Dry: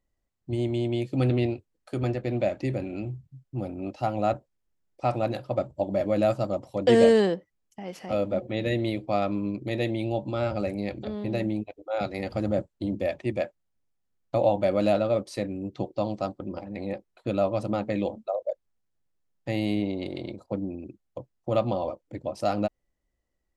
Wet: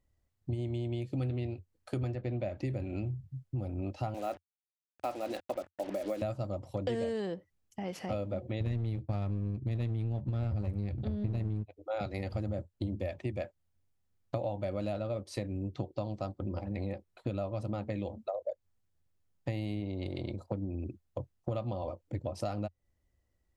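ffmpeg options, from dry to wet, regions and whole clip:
-filter_complex "[0:a]asettb=1/sr,asplit=3[a][b][c];[a]atrim=end=2.154[d];[b]atrim=start=2.15:end=2.58,asetpts=PTS-STARTPTS,afade=t=in:d=0.004:c=qsin,afade=t=out:st=0.426:d=0.004:c=qsin,lowpass=7.7k,highshelf=f=4.4k:g=-5.5[e];[c]atrim=start=2.576[f];[d][e]acrossfade=d=0.004:c1=hsin:c2=qsin[g];[g][f]acrossfade=d=0.004:c1=qsin:c2=hsin,asettb=1/sr,asplit=3[h][i][j];[h]atrim=end=4.144[k];[i]atrim=start=4.14:end=6.22,asetpts=PTS-STARTPTS,afade=t=in:d=0.004:c=qsin,afade=t=out:st=2.076:d=0.004:c=qsin,highpass=f=260:w=0.5412,highpass=f=260:w=1.3066,tremolo=f=5.1:d=0.48,acrusher=bits=6:mix=0:aa=0.5[l];[j]atrim=start=6.216[m];[k][l]acrossfade=d=0.004:c1=hsin:c2=qsin[n];[n][m]acrossfade=d=0.004:c1=qsin:c2=hsin,asettb=1/sr,asplit=3[o][p][q];[o]atrim=end=8.604[r];[p]atrim=start=8.6:end=11.69,asetpts=PTS-STARTPTS,afade=t=in:d=0.004:c=qsin,afade=t=out:st=3.086:d=0.004:c=qsin,agate=range=-33dB:threshold=-38dB:ratio=3:release=100:detection=peak,bass=f=250:g=14,treble=f=4k:g=1,aeval=exprs='clip(val(0),-1,0.0531)':c=same[s];[q]atrim=start=11.686[t];[r][s]acrossfade=d=0.004:c1=hsin:c2=qsin[u];[u][t]acrossfade=d=0.004:c1=qsin:c2=hsin,equalizer=f=88:t=o:w=0.88:g=13.5,acompressor=threshold=-32dB:ratio=6"

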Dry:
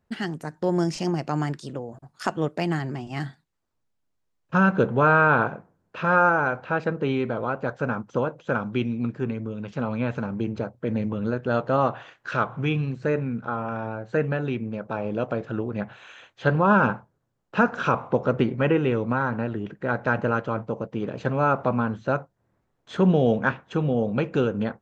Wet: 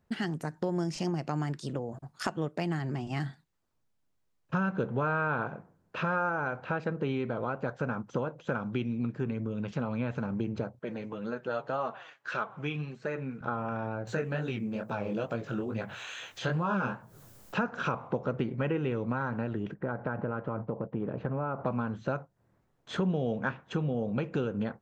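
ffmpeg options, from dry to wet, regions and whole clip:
-filter_complex "[0:a]asettb=1/sr,asplit=3[a][b][c];[a]atrim=end=10.794[d];[b]atrim=start=10.79:end=13.41,asetpts=PTS-STARTPTS,afade=t=in:d=0.004:c=qsin,afade=t=out:st=2.616:d=0.004:c=qsin,highpass=f=460:p=1,flanger=delay=4.3:depth=3.2:regen=38:speed=1.8:shape=triangular[e];[c]atrim=start=13.406[f];[d][e]acrossfade=d=0.004:c1=hsin:c2=qsin[g];[g][f]acrossfade=d=0.004:c1=qsin:c2=hsin,asettb=1/sr,asplit=3[h][i][j];[h]atrim=end=14.074[k];[i]atrim=start=14.07:end=17.57,asetpts=PTS-STARTPTS,afade=t=in:d=0.004:c=qsin,afade=t=out:st=3.496:d=0.004:c=qsin,aemphasis=mode=production:type=75kf,flanger=delay=17:depth=7.1:speed=2.3,acompressor=mode=upward:threshold=-34dB:ratio=2.5:attack=3.2:release=140:knee=2.83:detection=peak[l];[j]atrim=start=17.566[m];[k][l]acrossfade=d=0.004:c1=hsin:c2=qsin[n];[n][m]acrossfade=d=0.004:c1=qsin:c2=hsin,asettb=1/sr,asplit=3[o][p][q];[o]atrim=end=19.744[r];[p]atrim=start=19.74:end=21.66,asetpts=PTS-STARTPTS,afade=t=in:d=0.004:c=qsin,afade=t=out:st=1.916:d=0.004:c=qsin,lowpass=1.5k,acompressor=threshold=-26dB:ratio=2:attack=3.2:release=140:knee=1:detection=peak[s];[q]atrim=start=21.656[t];[r][s]acrossfade=d=0.004:c1=hsin:c2=qsin[u];[u][t]acrossfade=d=0.004:c1=qsin:c2=hsin,equalizer=f=150:w=1.7:g=2.5,acompressor=threshold=-30dB:ratio=3"

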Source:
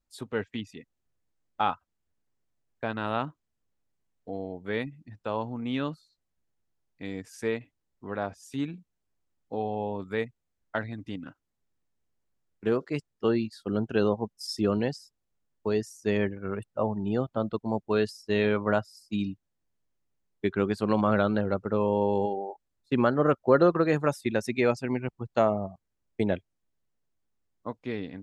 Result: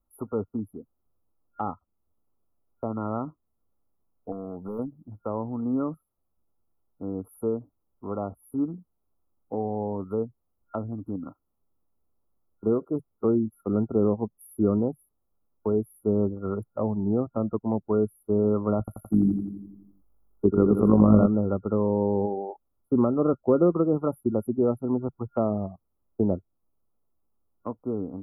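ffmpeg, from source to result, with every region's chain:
-filter_complex "[0:a]asettb=1/sr,asplit=3[a][b][c];[a]atrim=end=4.324[d];[b]atrim=start=4.32:end=4.79,asetpts=PTS-STARTPTS,afade=t=in:d=0.004:c=qsin,afade=t=out:st=0.466:d=0.004:c=qsin,equalizer=f=210:w=2.5:g=6,acompressor=threshold=-34dB:ratio=3:attack=3.2:release=140:knee=1:detection=peak,asoftclip=type=hard:threshold=-32dB[e];[c]atrim=start=4.786[f];[d][e]acrossfade=d=0.004:c1=hsin:c2=qsin[g];[g][f]acrossfade=d=0.004:c1=qsin:c2=hsin,asettb=1/sr,asplit=3[h][i][j];[h]atrim=end=18.794[k];[i]atrim=start=18.79:end=21.26,asetpts=PTS-STARTPTS,afade=t=in:d=0.004:c=qsin,afade=t=out:st=2.466:d=0.004:c=qsin,acontrast=70,tremolo=f=48:d=0.571,aecho=1:1:85|170|255|340|425|510|595|680:0.447|0.264|0.155|0.0917|0.0541|0.0319|0.0188|0.0111,atrim=end_sample=108927[l];[j]atrim=start=21.256[m];[k][l]acrossfade=d=0.004:c1=hsin:c2=qsin[n];[n][m]acrossfade=d=0.004:c1=qsin:c2=hsin,afftfilt=real='re*(1-between(b*sr/4096,1400,10000))':imag='im*(1-between(b*sr/4096,1400,10000))':win_size=4096:overlap=0.75,equalizer=f=140:t=o:w=0.28:g=-10,acrossover=split=420[o][p];[p]acompressor=threshold=-41dB:ratio=2.5[q];[o][q]amix=inputs=2:normalize=0,volume=5dB"

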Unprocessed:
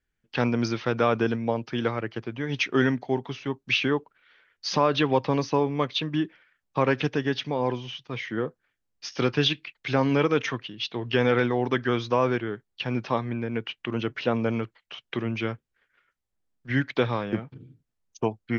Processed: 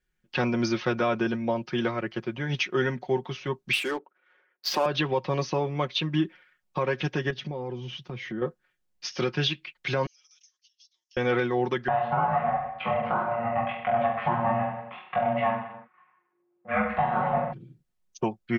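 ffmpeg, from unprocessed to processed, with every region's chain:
-filter_complex "[0:a]asettb=1/sr,asplit=3[a][b][c];[a]atrim=end=3.734[d];[b]atrim=start=3.73:end=4.86,asetpts=PTS-STARTPTS,afade=t=in:d=0.004:c=qsin,afade=t=out:st=1.126:d=0.004:c=qsin,highpass=f=270:w=0.5412,highpass=f=270:w=1.3066,adynamicsmooth=sensitivity=7.5:basefreq=1.4k[e];[c]atrim=start=4.856[f];[d][e]acrossfade=d=0.004:c1=hsin:c2=qsin[g];[g][f]acrossfade=d=0.004:c1=qsin:c2=hsin,asettb=1/sr,asplit=3[h][i][j];[h]atrim=end=7.304[k];[i]atrim=start=7.3:end=8.42,asetpts=PTS-STARTPTS,afade=t=in:d=0.004:c=qsin,afade=t=out:st=1.116:d=0.004:c=qsin,highpass=57,lowshelf=f=470:g=11.5,acompressor=threshold=-36dB:ratio=3:attack=3.2:release=140:knee=1:detection=peak[l];[j]atrim=start=8.416[m];[k][l]acrossfade=d=0.004:c1=hsin:c2=qsin[n];[n][m]acrossfade=d=0.004:c1=qsin:c2=hsin,asettb=1/sr,asplit=3[o][p][q];[o]atrim=end=10.064[r];[p]atrim=start=10.06:end=11.17,asetpts=PTS-STARTPTS,afade=t=in:d=0.004:c=qsin,afade=t=out:st=1.106:d=0.004:c=qsin,asuperpass=centerf=5900:order=4:qfactor=3.8,acompressor=threshold=-55dB:ratio=16:attack=3.2:release=140:knee=1:detection=peak[s];[q]atrim=start=11.166[t];[r][s]acrossfade=d=0.004:c1=hsin:c2=qsin[u];[u][t]acrossfade=d=0.004:c1=qsin:c2=hsin,asettb=1/sr,asplit=3[v][w][x];[v]atrim=end=11.884[y];[w]atrim=start=11.88:end=17.53,asetpts=PTS-STARTPTS,afade=t=in:d=0.004:c=qsin,afade=t=out:st=5.646:d=0.004:c=qsin,aeval=exprs='val(0)*sin(2*PI*350*n/s)':c=same,highpass=110,equalizer=f=330:t=q:w=4:g=-4,equalizer=f=760:t=q:w=4:g=9,equalizer=f=1.1k:t=q:w=4:g=8,lowpass=f=2.3k:w=0.5412,lowpass=f=2.3k:w=1.3066,aecho=1:1:20|42|66.2|92.82|122.1|154.3|189.7|228.7|271.6|318.7:0.794|0.631|0.501|0.398|0.316|0.251|0.2|0.158|0.126|0.1,atrim=end_sample=249165[z];[x]atrim=start=17.526[aa];[y][z]acrossfade=d=0.004:c1=hsin:c2=qsin[ab];[ab][aa]acrossfade=d=0.004:c1=qsin:c2=hsin,aecho=1:1:5.5:0.69,alimiter=limit=-15dB:level=0:latency=1:release=370"

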